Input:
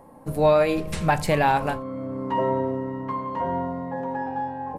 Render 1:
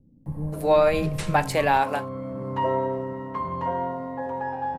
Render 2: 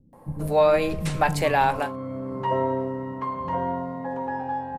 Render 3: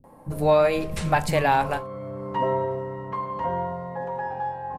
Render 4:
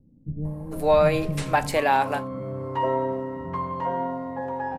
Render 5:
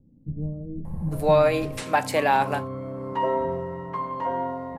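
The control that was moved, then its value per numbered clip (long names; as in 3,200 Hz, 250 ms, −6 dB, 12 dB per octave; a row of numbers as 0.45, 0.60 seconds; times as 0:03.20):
multiband delay without the direct sound, delay time: 260, 130, 40, 450, 850 milliseconds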